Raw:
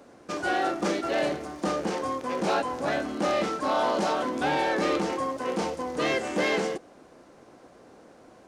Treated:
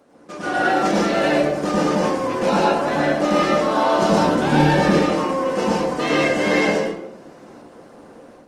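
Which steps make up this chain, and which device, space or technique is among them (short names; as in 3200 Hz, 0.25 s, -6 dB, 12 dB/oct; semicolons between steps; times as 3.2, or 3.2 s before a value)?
4.02–4.88 tone controls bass +13 dB, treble +4 dB; far-field microphone of a smart speaker (reverb RT60 0.80 s, pre-delay 98 ms, DRR -4 dB; HPF 94 Hz 6 dB/oct; AGC gain up to 7 dB; gain -2.5 dB; Opus 24 kbps 48000 Hz)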